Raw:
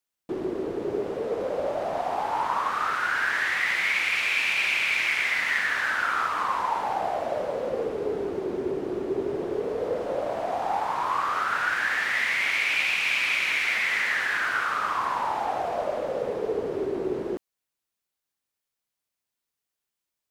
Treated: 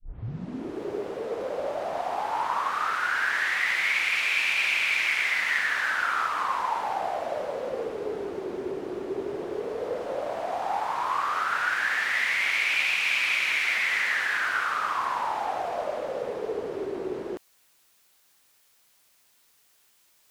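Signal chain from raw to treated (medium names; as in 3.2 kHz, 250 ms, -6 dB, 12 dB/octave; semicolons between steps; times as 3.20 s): tape start-up on the opening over 0.83 s; bass shelf 450 Hz -6.5 dB; reverse; upward compressor, threshold -44 dBFS; reverse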